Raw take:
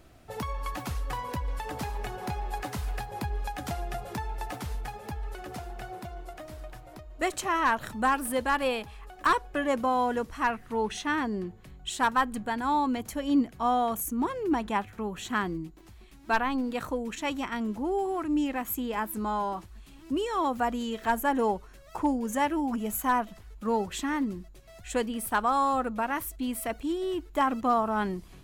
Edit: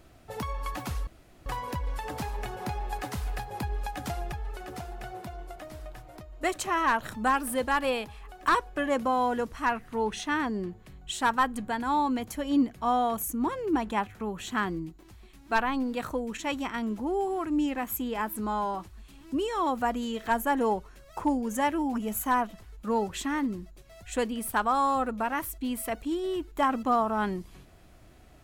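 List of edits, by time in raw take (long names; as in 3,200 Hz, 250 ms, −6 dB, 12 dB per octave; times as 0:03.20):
0:01.07: splice in room tone 0.39 s
0:03.93–0:05.10: remove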